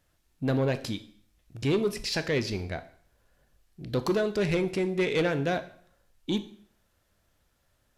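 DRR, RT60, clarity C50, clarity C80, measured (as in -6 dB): 10.5 dB, 0.55 s, 15.0 dB, 18.0 dB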